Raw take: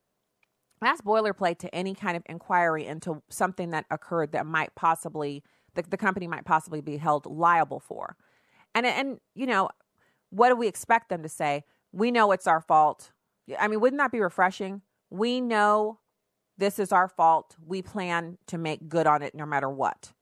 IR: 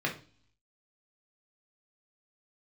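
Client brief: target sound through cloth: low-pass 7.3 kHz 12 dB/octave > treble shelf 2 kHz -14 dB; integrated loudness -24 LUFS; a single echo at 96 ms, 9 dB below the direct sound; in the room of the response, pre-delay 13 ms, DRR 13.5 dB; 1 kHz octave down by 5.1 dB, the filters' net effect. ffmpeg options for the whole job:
-filter_complex "[0:a]equalizer=f=1000:t=o:g=-3.5,aecho=1:1:96:0.355,asplit=2[s0][s1];[1:a]atrim=start_sample=2205,adelay=13[s2];[s1][s2]afir=irnorm=-1:irlink=0,volume=0.0841[s3];[s0][s3]amix=inputs=2:normalize=0,lowpass=7300,highshelf=f=2000:g=-14,volume=1.88"

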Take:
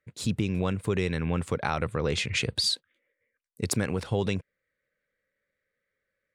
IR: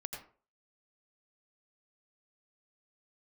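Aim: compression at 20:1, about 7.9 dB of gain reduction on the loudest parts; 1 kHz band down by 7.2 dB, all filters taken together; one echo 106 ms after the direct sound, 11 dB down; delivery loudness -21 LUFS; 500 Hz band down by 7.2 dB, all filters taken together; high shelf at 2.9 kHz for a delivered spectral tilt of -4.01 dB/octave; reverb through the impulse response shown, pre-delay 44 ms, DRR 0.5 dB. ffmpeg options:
-filter_complex "[0:a]equalizer=f=500:t=o:g=-7.5,equalizer=f=1000:t=o:g=-8.5,highshelf=f=2900:g=5,acompressor=threshold=0.0447:ratio=20,aecho=1:1:106:0.282,asplit=2[s0][s1];[1:a]atrim=start_sample=2205,adelay=44[s2];[s1][s2]afir=irnorm=-1:irlink=0,volume=1.06[s3];[s0][s3]amix=inputs=2:normalize=0,volume=2.99"

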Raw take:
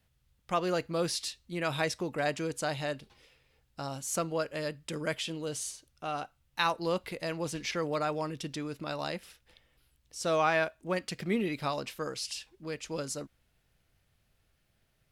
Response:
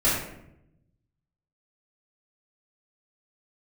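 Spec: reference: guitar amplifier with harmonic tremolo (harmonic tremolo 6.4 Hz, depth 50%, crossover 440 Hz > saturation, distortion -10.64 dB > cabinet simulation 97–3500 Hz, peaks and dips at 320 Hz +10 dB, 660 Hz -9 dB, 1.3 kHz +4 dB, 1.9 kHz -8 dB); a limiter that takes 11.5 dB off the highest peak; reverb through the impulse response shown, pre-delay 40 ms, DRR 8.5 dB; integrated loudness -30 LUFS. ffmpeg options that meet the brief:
-filter_complex "[0:a]alimiter=limit=0.0631:level=0:latency=1,asplit=2[s0][s1];[1:a]atrim=start_sample=2205,adelay=40[s2];[s1][s2]afir=irnorm=-1:irlink=0,volume=0.0708[s3];[s0][s3]amix=inputs=2:normalize=0,acrossover=split=440[s4][s5];[s4]aeval=exprs='val(0)*(1-0.5/2+0.5/2*cos(2*PI*6.4*n/s))':c=same[s6];[s5]aeval=exprs='val(0)*(1-0.5/2-0.5/2*cos(2*PI*6.4*n/s))':c=same[s7];[s6][s7]amix=inputs=2:normalize=0,asoftclip=threshold=0.0178,highpass=97,equalizer=f=320:t=q:w=4:g=10,equalizer=f=660:t=q:w=4:g=-9,equalizer=f=1300:t=q:w=4:g=4,equalizer=f=1900:t=q:w=4:g=-8,lowpass=f=3500:w=0.5412,lowpass=f=3500:w=1.3066,volume=2.99"

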